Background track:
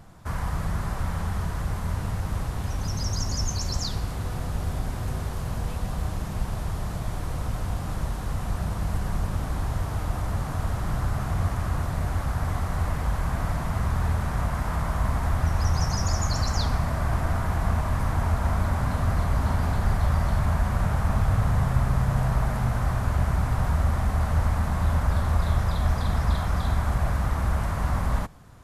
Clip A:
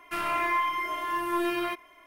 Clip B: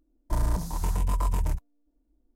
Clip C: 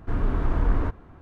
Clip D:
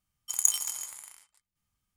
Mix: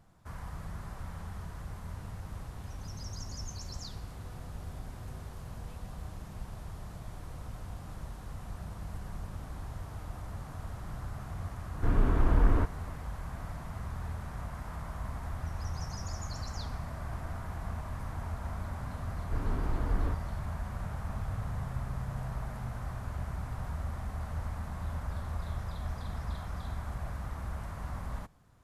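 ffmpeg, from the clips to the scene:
ffmpeg -i bed.wav -i cue0.wav -i cue1.wav -i cue2.wav -filter_complex "[3:a]asplit=2[link_01][link_02];[0:a]volume=-13.5dB[link_03];[link_01]atrim=end=1.21,asetpts=PTS-STARTPTS,volume=-1.5dB,afade=type=in:duration=0.004:curve=hsin,afade=type=out:start_time=1.206:duration=0.004:curve=hsin,adelay=11750[link_04];[link_02]atrim=end=1.21,asetpts=PTS-STARTPTS,volume=-8.5dB,afade=type=in:duration=0.004:curve=hsin,afade=type=out:start_time=1.206:duration=0.004:curve=hsin,adelay=848484S[link_05];[link_03][link_04][link_05]amix=inputs=3:normalize=0" out.wav

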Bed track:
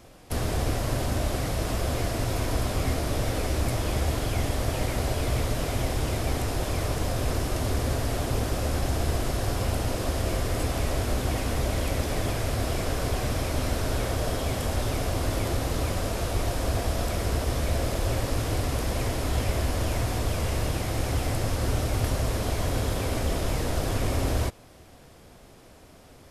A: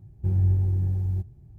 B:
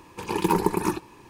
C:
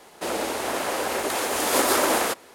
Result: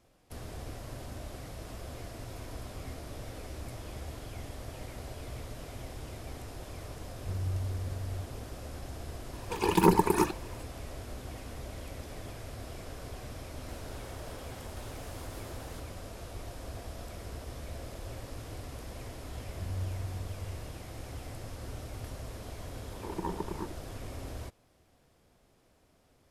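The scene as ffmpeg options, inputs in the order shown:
ffmpeg -i bed.wav -i cue0.wav -i cue1.wav -i cue2.wav -filter_complex "[1:a]asplit=2[link_01][link_02];[2:a]asplit=2[link_03][link_04];[0:a]volume=-15.5dB[link_05];[link_01]equalizer=frequency=290:width_type=o:width=1.6:gain=-6.5[link_06];[link_03]aphaser=in_gain=1:out_gain=1:delay=2.9:decay=0.42:speed=1.8:type=triangular[link_07];[3:a]acompressor=threshold=-31dB:ratio=6:attack=3.2:release=140:knee=1:detection=peak[link_08];[link_04]afwtdn=0.0316[link_09];[link_06]atrim=end=1.58,asetpts=PTS-STARTPTS,volume=-11dB,afade=type=in:duration=0.004:curve=hsin,afade=type=out:start_time=1.576:duration=0.004:curve=hsin,adelay=7030[link_10];[link_07]atrim=end=1.29,asetpts=PTS-STARTPTS,volume=-1.5dB,afade=type=in:duration=0.004:curve=hsin,afade=type=out:start_time=1.286:duration=0.004:curve=hsin,adelay=9330[link_11];[link_08]atrim=end=2.54,asetpts=PTS-STARTPTS,volume=-17dB,afade=type=in:duration=0.004:curve=hsin,afade=type=out:start_time=2.536:duration=0.004:curve=hsin,adelay=13470[link_12];[link_02]atrim=end=1.58,asetpts=PTS-STARTPTS,volume=-15dB,afade=type=in:duration=0.004:curve=hsin,afade=type=out:start_time=1.576:duration=0.004:curve=hsin,adelay=19340[link_13];[link_09]atrim=end=1.29,asetpts=PTS-STARTPTS,volume=-14dB,afade=type=in:duration=0.004:curve=hsin,afade=type=out:start_time=1.286:duration=0.004:curve=hsin,adelay=22740[link_14];[link_05][link_10][link_11][link_12][link_13][link_14]amix=inputs=6:normalize=0" out.wav

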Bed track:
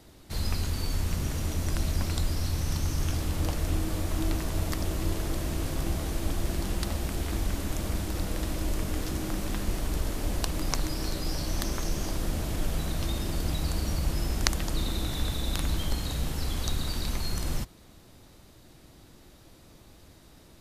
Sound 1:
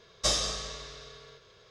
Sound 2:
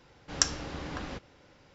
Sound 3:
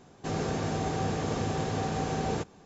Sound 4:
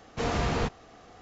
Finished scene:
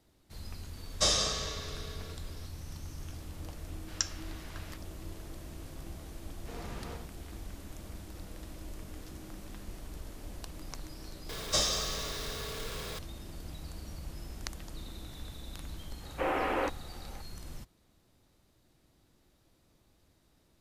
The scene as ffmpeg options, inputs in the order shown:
ffmpeg -i bed.wav -i cue0.wav -i cue1.wav -i cue2.wav -i cue3.wav -filter_complex "[1:a]asplit=2[link_01][link_02];[4:a]asplit=2[link_03][link_04];[0:a]volume=-14.5dB[link_05];[link_01]dynaudnorm=framelen=210:gausssize=3:maxgain=4dB[link_06];[2:a]highpass=1300[link_07];[link_03]aecho=1:1:83:0.596[link_08];[link_02]aeval=exprs='val(0)+0.5*0.0211*sgn(val(0))':channel_layout=same[link_09];[link_04]highpass=frequency=230:width_type=q:width=0.5412,highpass=frequency=230:width_type=q:width=1.307,lowpass=frequency=2800:width_type=q:width=0.5176,lowpass=frequency=2800:width_type=q:width=0.7071,lowpass=frequency=2800:width_type=q:width=1.932,afreqshift=64[link_10];[link_06]atrim=end=1.7,asetpts=PTS-STARTPTS,volume=-2dB,afade=type=in:duration=0.004:curve=hsin,afade=type=out:start_time=1.696:duration=0.004:curve=hsin,adelay=770[link_11];[link_07]atrim=end=1.74,asetpts=PTS-STARTPTS,volume=-6.5dB,afade=type=in:duration=0.004:curve=hsin,afade=type=out:start_time=1.736:duration=0.004:curve=hsin,adelay=3590[link_12];[link_08]atrim=end=1.21,asetpts=PTS-STARTPTS,volume=-17.5dB,afade=type=in:duration=0.004:curve=hsin,afade=type=out:start_time=1.206:duration=0.004:curve=hsin,adelay=6290[link_13];[link_09]atrim=end=1.7,asetpts=PTS-STARTPTS,volume=-3dB,afade=type=in:duration=0.004:curve=hsin,afade=type=out:start_time=1.696:duration=0.004:curve=hsin,adelay=11290[link_14];[link_10]atrim=end=1.21,asetpts=PTS-STARTPTS,volume=-0.5dB,afade=type=in:duration=0.004:curve=hsin,afade=type=out:start_time=1.206:duration=0.004:curve=hsin,adelay=16010[link_15];[link_05][link_11][link_12][link_13][link_14][link_15]amix=inputs=6:normalize=0" out.wav

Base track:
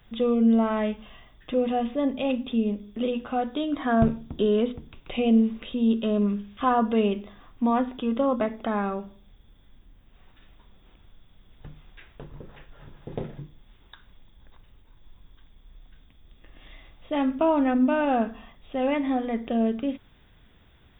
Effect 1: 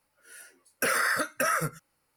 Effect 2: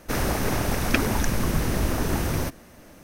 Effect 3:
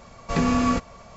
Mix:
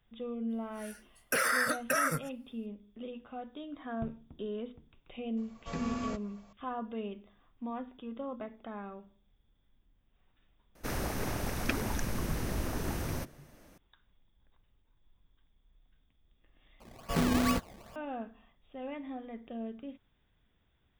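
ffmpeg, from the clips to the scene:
ffmpeg -i bed.wav -i cue0.wav -i cue1.wav -i cue2.wav -filter_complex "[3:a]asplit=2[link_01][link_02];[0:a]volume=-16dB[link_03];[link_02]acrusher=samples=22:mix=1:aa=0.000001:lfo=1:lforange=22:lforate=2.4[link_04];[link_03]asplit=2[link_05][link_06];[link_05]atrim=end=16.804[link_07];[link_04]atrim=end=1.16,asetpts=PTS-STARTPTS,volume=-6.5dB[link_08];[link_06]atrim=start=17.956[link_09];[1:a]atrim=end=2.16,asetpts=PTS-STARTPTS,volume=-3dB,afade=type=in:duration=0.004:curve=hsin,afade=type=out:start_time=2.156:duration=0.004:curve=hsin,adelay=500[link_10];[link_01]atrim=end=1.16,asetpts=PTS-STARTPTS,volume=-15dB,afade=type=in:duration=0.004:curve=hsin,afade=type=out:start_time=1.156:duration=0.004:curve=hsin,adelay=236817S[link_11];[2:a]atrim=end=3.03,asetpts=PTS-STARTPTS,volume=-10dB,afade=type=in:duration=0.004:curve=hsin,afade=type=out:start_time=3.026:duration=0.004:curve=hsin,adelay=10750[link_12];[link_07][link_08]acrossfade=duration=0.004:curve1=hsin:curve2=hsin[link_13];[link_13][link_09]acrossfade=duration=0.004:curve1=hsin:curve2=hsin[link_14];[link_14][link_10][link_11][link_12]amix=inputs=4:normalize=0" out.wav

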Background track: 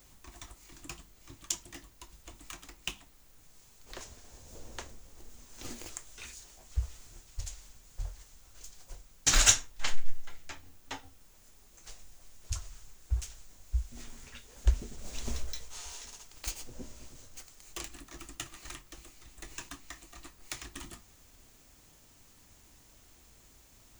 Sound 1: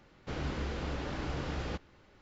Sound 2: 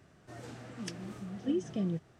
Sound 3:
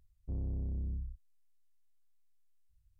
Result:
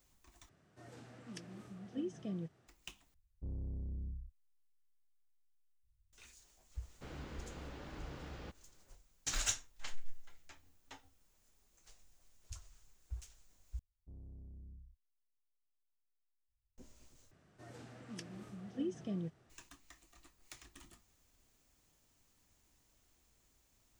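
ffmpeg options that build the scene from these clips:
ffmpeg -i bed.wav -i cue0.wav -i cue1.wav -i cue2.wav -filter_complex "[2:a]asplit=2[link_01][link_02];[3:a]asplit=2[link_03][link_04];[0:a]volume=-13.5dB[link_05];[link_01]highpass=59[link_06];[link_03]bandreject=frequency=700:width=11[link_07];[link_04]bandreject=frequency=490:width=8.3[link_08];[link_05]asplit=5[link_09][link_10][link_11][link_12][link_13];[link_09]atrim=end=0.494[link_14];[link_06]atrim=end=2.19,asetpts=PTS-STARTPTS,volume=-8.5dB[link_15];[link_10]atrim=start=2.676:end=3.144[link_16];[link_07]atrim=end=2.99,asetpts=PTS-STARTPTS,volume=-5.5dB[link_17];[link_11]atrim=start=6.126:end=13.794[link_18];[link_08]atrim=end=2.99,asetpts=PTS-STARTPTS,volume=-16.5dB[link_19];[link_12]atrim=start=16.776:end=17.314[link_20];[link_02]atrim=end=2.19,asetpts=PTS-STARTPTS,volume=-7dB[link_21];[link_13]atrim=start=19.496[link_22];[1:a]atrim=end=2.21,asetpts=PTS-STARTPTS,volume=-12dB,afade=type=in:duration=0.004:curve=hsin,afade=type=out:start_time=2.206:duration=0.004:curve=hsin,adelay=297234S[link_23];[link_14][link_15]acrossfade=duration=0.004:curve1=hsin:curve2=hsin[link_24];[link_24][link_16]acrossfade=duration=0.004:curve1=hsin:curve2=hsin[link_25];[link_25][link_17]acrossfade=duration=0.004:curve1=hsin:curve2=hsin[link_26];[link_26][link_18]acrossfade=duration=0.004:curve1=hsin:curve2=hsin[link_27];[link_27][link_19]acrossfade=duration=0.004:curve1=hsin:curve2=hsin[link_28];[link_28][link_20]acrossfade=duration=0.004:curve1=hsin:curve2=hsin[link_29];[link_29][link_21]acrossfade=duration=0.004:curve1=hsin:curve2=hsin[link_30];[link_30][link_22]acrossfade=duration=0.004:curve1=hsin:curve2=hsin[link_31];[link_31][link_23]amix=inputs=2:normalize=0" out.wav

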